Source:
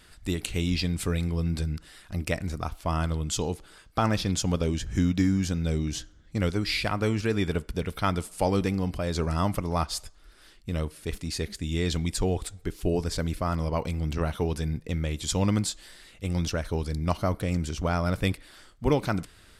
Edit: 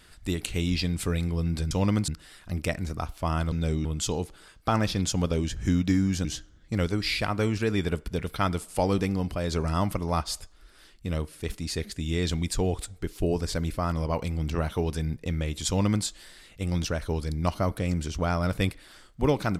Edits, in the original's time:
0:05.55–0:05.88: move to 0:03.15
0:15.31–0:15.68: duplicate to 0:01.71

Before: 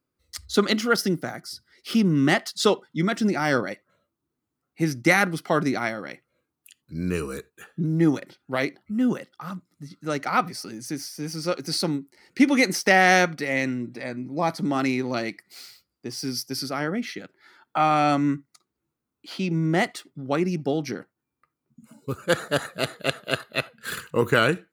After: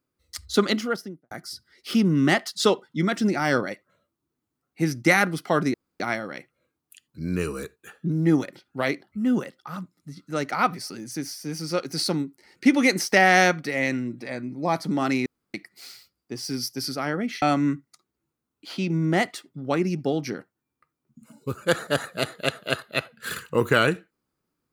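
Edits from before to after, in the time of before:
0:00.61–0:01.31: fade out and dull
0:05.74: splice in room tone 0.26 s
0:15.00–0:15.28: fill with room tone
0:17.16–0:18.03: remove

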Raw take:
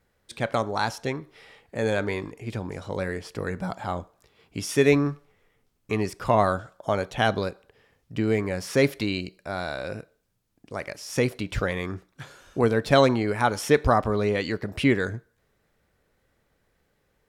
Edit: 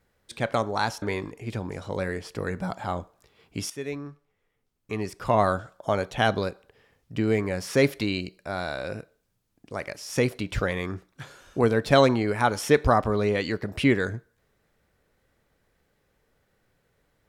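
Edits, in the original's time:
0:01.02–0:02.02: remove
0:04.70–0:06.49: fade in quadratic, from −15 dB

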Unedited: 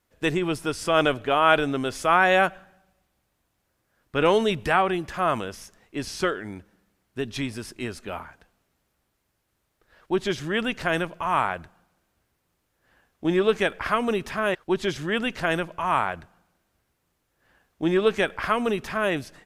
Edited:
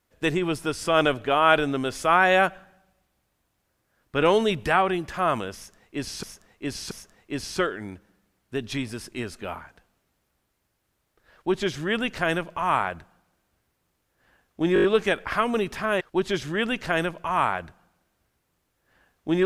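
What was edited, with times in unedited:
0:05.55–0:06.23: repeat, 3 plays
0:13.38: stutter 0.02 s, 6 plays

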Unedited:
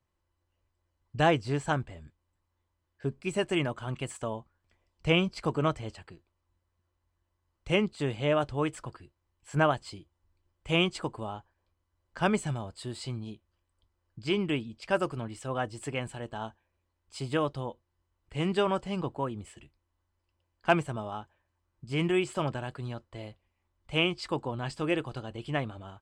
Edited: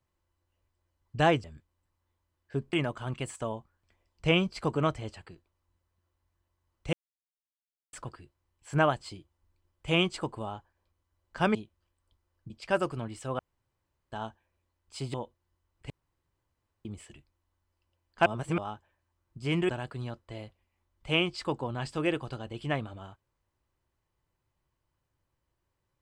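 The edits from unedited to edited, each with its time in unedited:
0:01.44–0:01.94: remove
0:03.23–0:03.54: remove
0:07.74–0:08.74: silence
0:12.36–0:13.26: remove
0:14.21–0:14.70: remove
0:15.59–0:16.32: fill with room tone
0:17.34–0:17.61: remove
0:18.37–0:19.32: fill with room tone
0:20.73–0:21.05: reverse
0:22.16–0:22.53: remove

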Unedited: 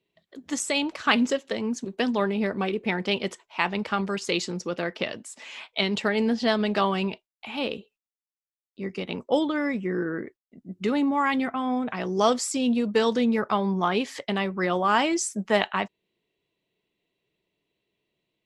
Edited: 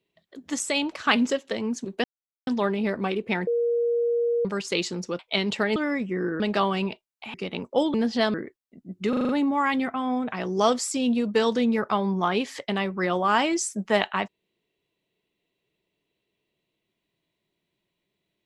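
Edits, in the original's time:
0:02.04: splice in silence 0.43 s
0:03.04–0:04.02: beep over 472 Hz −20.5 dBFS
0:04.76–0:05.64: remove
0:06.21–0:06.61: swap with 0:09.50–0:10.14
0:07.55–0:08.90: remove
0:10.89: stutter 0.04 s, 6 plays

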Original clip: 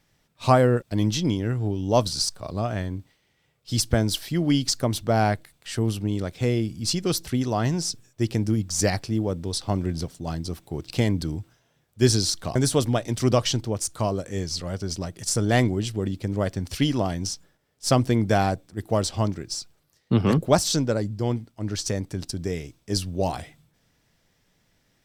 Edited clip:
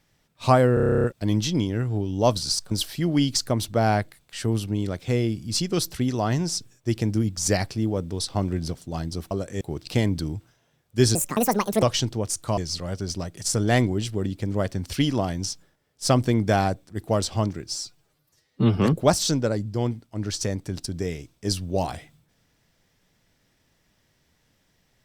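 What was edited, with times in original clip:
0:00.74: stutter 0.03 s, 11 plays
0:02.41–0:04.04: remove
0:12.18–0:13.34: play speed 172%
0:14.09–0:14.39: move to 0:10.64
0:19.50–0:20.23: time-stretch 1.5×

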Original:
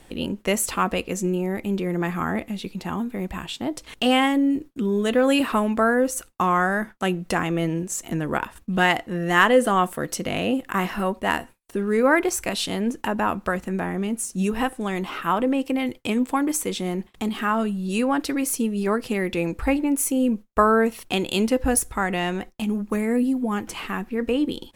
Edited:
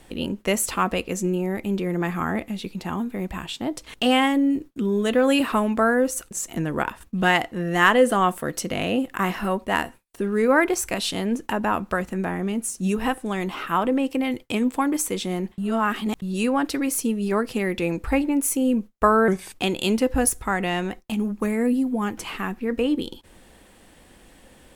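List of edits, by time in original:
0:06.31–0:07.86: remove
0:17.13–0:17.77: reverse
0:20.83–0:21.08: play speed 83%

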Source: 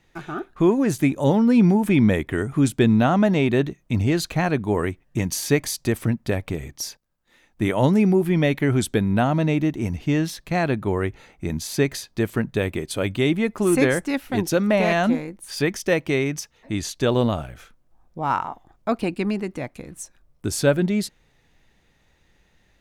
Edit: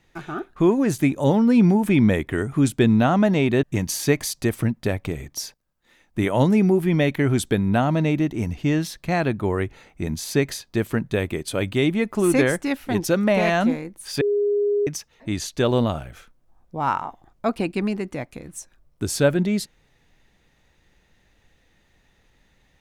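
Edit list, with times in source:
0:03.63–0:05.06: remove
0:15.64–0:16.30: beep over 410 Hz −17.5 dBFS

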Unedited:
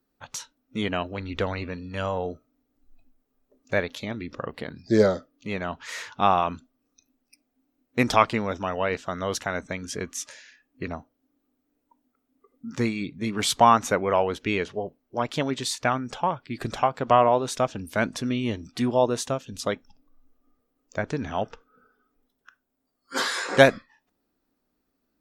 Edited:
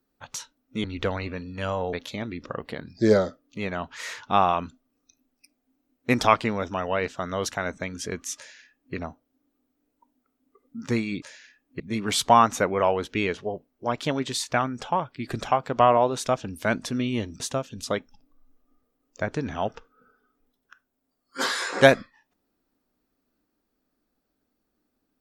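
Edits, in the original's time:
0:00.84–0:01.20: remove
0:02.29–0:03.82: remove
0:10.26–0:10.84: duplicate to 0:13.11
0:18.71–0:19.16: remove

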